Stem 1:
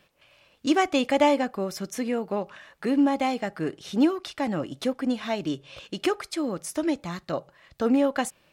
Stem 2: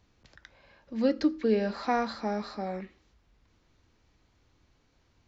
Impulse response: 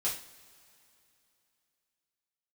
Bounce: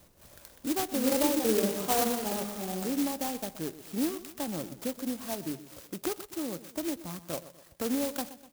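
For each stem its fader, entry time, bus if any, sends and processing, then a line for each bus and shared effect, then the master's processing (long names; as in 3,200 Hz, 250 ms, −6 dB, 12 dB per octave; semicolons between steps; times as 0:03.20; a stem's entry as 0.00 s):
−8.0 dB, 0.00 s, no send, echo send −15 dB, multiband upward and downward compressor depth 40%
+1.5 dB, 0.00 s, send −10 dB, echo send −9.5 dB, automatic ducking −11 dB, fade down 1.15 s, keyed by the first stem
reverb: on, pre-delay 3 ms
echo: repeating echo 124 ms, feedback 45%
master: high-shelf EQ 8,800 Hz −10.5 dB; converter with an unsteady clock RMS 0.15 ms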